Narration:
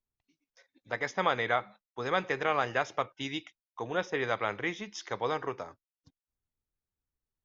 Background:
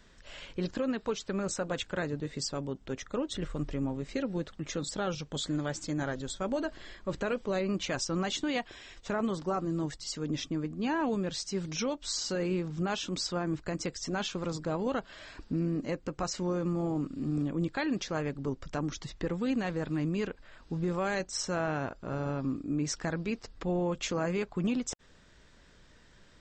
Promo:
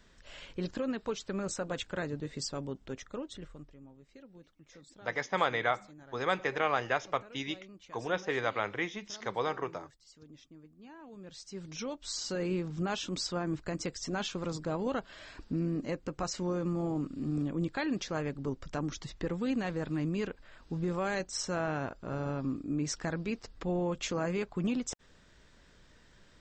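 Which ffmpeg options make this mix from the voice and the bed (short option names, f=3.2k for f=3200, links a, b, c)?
-filter_complex "[0:a]adelay=4150,volume=-1dB[a];[1:a]volume=17dB,afade=t=out:st=2.75:d=0.98:silence=0.11885,afade=t=in:st=11.09:d=1.42:silence=0.105925[b];[a][b]amix=inputs=2:normalize=0"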